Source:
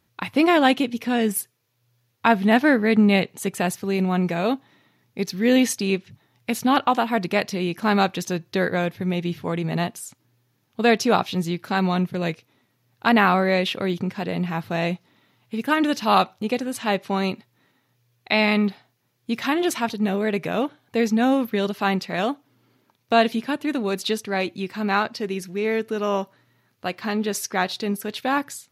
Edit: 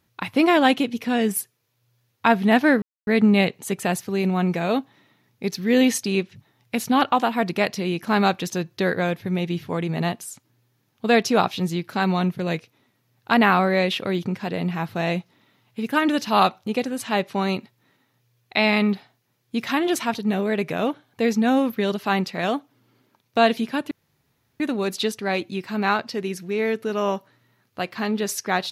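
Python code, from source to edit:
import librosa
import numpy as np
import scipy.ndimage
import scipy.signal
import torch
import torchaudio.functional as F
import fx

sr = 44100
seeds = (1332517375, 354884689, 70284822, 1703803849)

y = fx.edit(x, sr, fx.insert_silence(at_s=2.82, length_s=0.25),
    fx.insert_room_tone(at_s=23.66, length_s=0.69), tone=tone)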